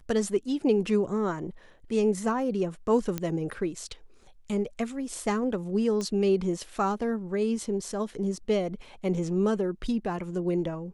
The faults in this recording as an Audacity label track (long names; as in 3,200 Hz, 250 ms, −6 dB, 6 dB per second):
3.180000	3.180000	click −15 dBFS
6.010000	6.010000	click −20 dBFS